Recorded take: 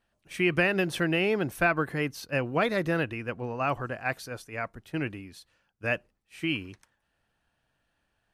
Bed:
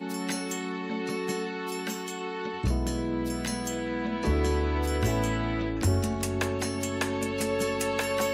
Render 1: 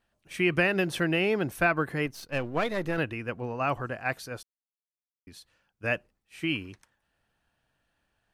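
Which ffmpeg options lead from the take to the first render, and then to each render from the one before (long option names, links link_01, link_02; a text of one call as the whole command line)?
ffmpeg -i in.wav -filter_complex "[0:a]asettb=1/sr,asplit=3[link_01][link_02][link_03];[link_01]atrim=end=2.064[link_04];[link_02]atrim=start=2.06:end=2.98,asetpts=PTS-STARTPTS,afade=type=in:duration=0.004:curve=qsin,afade=type=out:start_time=0.916:duration=0.004:curve=qsin,aeval=exprs='if(lt(val(0),0),0.447*val(0),val(0))':channel_layout=same[link_05];[link_03]atrim=start=2.976[link_06];[link_04][link_05]acrossfade=duration=0.004:curve1=hsin:curve2=qsin[link_07];[link_07][link_06]acrossfade=duration=0.004:curve1=qsin:curve2=hsin,asplit=3[link_08][link_09][link_10];[link_08]atrim=end=4.43,asetpts=PTS-STARTPTS,afade=type=out:start_time=4.426:duration=0.004:curve=hsin[link_11];[link_09]atrim=start=4.43:end=5.27,asetpts=PTS-STARTPTS,volume=0[link_12];[link_10]atrim=start=5.27,asetpts=PTS-STARTPTS,afade=type=in:duration=0.004:curve=hsin[link_13];[link_11][link_12][link_13]concat=n=3:v=0:a=1" out.wav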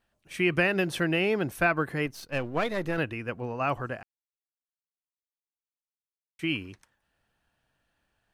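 ffmpeg -i in.wav -filter_complex "[0:a]asplit=3[link_01][link_02][link_03];[link_01]atrim=end=4.03,asetpts=PTS-STARTPTS,afade=type=out:start_time=4.026:duration=0.004:curve=hsin[link_04];[link_02]atrim=start=4.03:end=6.39,asetpts=PTS-STARTPTS,volume=0[link_05];[link_03]atrim=start=6.39,asetpts=PTS-STARTPTS,afade=type=in:duration=0.004:curve=hsin[link_06];[link_04][link_05][link_06]concat=n=3:v=0:a=1" out.wav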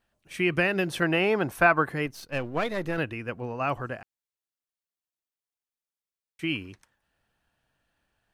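ffmpeg -i in.wav -filter_complex "[0:a]asettb=1/sr,asplit=3[link_01][link_02][link_03];[link_01]atrim=end=1.024[link_04];[link_02]atrim=start=1.02:end=1.9,asetpts=PTS-STARTPTS,afade=type=in:duration=0.004:curve=qsin,afade=type=out:start_time=0.876:duration=0.004:curve=qsin,equalizer=frequency=990:width=0.94:gain=8[link_05];[link_03]atrim=start=1.896[link_06];[link_04][link_05]acrossfade=duration=0.004:curve1=hsin:curve2=qsin[link_07];[link_07][link_06]acrossfade=duration=0.004:curve1=qsin:curve2=hsin" out.wav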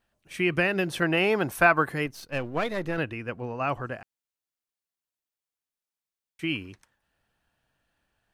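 ffmpeg -i in.wav -filter_complex "[0:a]asettb=1/sr,asplit=3[link_01][link_02][link_03];[link_01]atrim=end=1.174[link_04];[link_02]atrim=start=1.17:end=2.04,asetpts=PTS-STARTPTS,afade=type=in:duration=0.004:curve=qsin,afade=type=out:start_time=0.866:duration=0.004:curve=qsin,highshelf=frequency=3800:gain=6[link_05];[link_03]atrim=start=2.036[link_06];[link_04][link_05]acrossfade=duration=0.004:curve1=hsin:curve2=qsin[link_07];[link_07][link_06]acrossfade=duration=0.004:curve1=qsin:curve2=hsin,asettb=1/sr,asplit=3[link_08][link_09][link_10];[link_08]atrim=end=2.794[link_11];[link_09]atrim=start=2.79:end=3.92,asetpts=PTS-STARTPTS,afade=type=in:duration=0.004:curve=qsin,afade=type=out:start_time=1.126:duration=0.004:curve=qsin,highshelf=frequency=10000:gain=-6[link_12];[link_10]atrim=start=3.916[link_13];[link_11][link_12]acrossfade=duration=0.004:curve1=hsin:curve2=qsin[link_14];[link_14][link_13]acrossfade=duration=0.004:curve1=qsin:curve2=hsin" out.wav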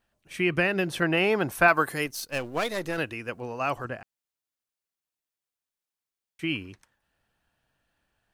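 ffmpeg -i in.wav -filter_complex "[0:a]asettb=1/sr,asplit=3[link_01][link_02][link_03];[link_01]atrim=end=1.684[link_04];[link_02]atrim=start=1.68:end=3.85,asetpts=PTS-STARTPTS,afade=type=in:duration=0.004:curve=qsin,afade=type=out:start_time=2.166:duration=0.004:curve=qsin,bass=frequency=250:gain=-5,treble=frequency=4000:gain=12[link_05];[link_03]atrim=start=3.846[link_06];[link_04][link_05]acrossfade=duration=0.004:curve1=hsin:curve2=qsin[link_07];[link_07][link_06]acrossfade=duration=0.004:curve1=qsin:curve2=hsin" out.wav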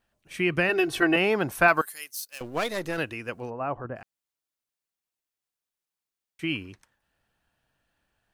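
ffmpeg -i in.wav -filter_complex "[0:a]asettb=1/sr,asplit=3[link_01][link_02][link_03];[link_01]atrim=end=0.694[link_04];[link_02]atrim=start=0.69:end=1.16,asetpts=PTS-STARTPTS,afade=type=in:duration=0.004:curve=qsin,afade=type=out:start_time=0.466:duration=0.004:curve=qsin,aecho=1:1:2.7:0.92,atrim=end_sample=20727[link_05];[link_03]atrim=start=1.156[link_06];[link_04][link_05]acrossfade=duration=0.004:curve1=hsin:curve2=qsin[link_07];[link_07][link_06]acrossfade=duration=0.004:curve1=qsin:curve2=hsin,asettb=1/sr,asplit=3[link_08][link_09][link_10];[link_08]atrim=end=1.814[link_11];[link_09]atrim=start=1.81:end=2.41,asetpts=PTS-STARTPTS,afade=type=in:duration=0.004:curve=qsin,afade=type=out:start_time=0.596:duration=0.004:curve=qsin,aderivative[link_12];[link_10]atrim=start=2.406[link_13];[link_11][link_12]acrossfade=duration=0.004:curve1=hsin:curve2=qsin[link_14];[link_14][link_13]acrossfade=duration=0.004:curve1=qsin:curve2=hsin,asplit=3[link_15][link_16][link_17];[link_15]afade=type=out:start_time=3.49:duration=0.02[link_18];[link_16]lowpass=1100,afade=type=in:start_time=3.49:duration=0.02,afade=type=out:start_time=3.95:duration=0.02[link_19];[link_17]afade=type=in:start_time=3.95:duration=0.02[link_20];[link_18][link_19][link_20]amix=inputs=3:normalize=0" out.wav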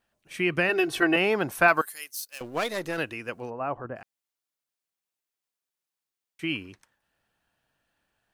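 ffmpeg -i in.wav -af "lowshelf=frequency=110:gain=-7.5" out.wav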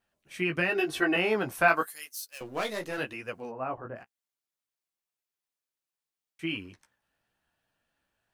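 ffmpeg -i in.wav -af "flanger=delay=9.8:depth=9.2:regen=-14:speed=0.91:shape=triangular" out.wav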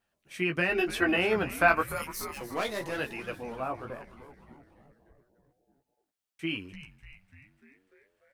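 ffmpeg -i in.wav -filter_complex "[0:a]asplit=8[link_01][link_02][link_03][link_04][link_05][link_06][link_07][link_08];[link_02]adelay=296,afreqshift=-140,volume=-14dB[link_09];[link_03]adelay=592,afreqshift=-280,volume=-18.2dB[link_10];[link_04]adelay=888,afreqshift=-420,volume=-22.3dB[link_11];[link_05]adelay=1184,afreqshift=-560,volume=-26.5dB[link_12];[link_06]adelay=1480,afreqshift=-700,volume=-30.6dB[link_13];[link_07]adelay=1776,afreqshift=-840,volume=-34.8dB[link_14];[link_08]adelay=2072,afreqshift=-980,volume=-38.9dB[link_15];[link_01][link_09][link_10][link_11][link_12][link_13][link_14][link_15]amix=inputs=8:normalize=0" out.wav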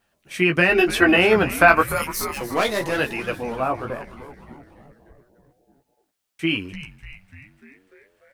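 ffmpeg -i in.wav -af "volume=10.5dB,alimiter=limit=-2dB:level=0:latency=1" out.wav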